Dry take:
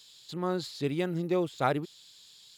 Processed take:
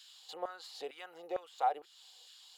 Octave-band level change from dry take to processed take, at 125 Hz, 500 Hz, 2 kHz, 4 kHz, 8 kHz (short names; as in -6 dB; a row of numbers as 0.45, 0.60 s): under -35 dB, -10.5 dB, -11.0 dB, -6.5 dB, -7.0 dB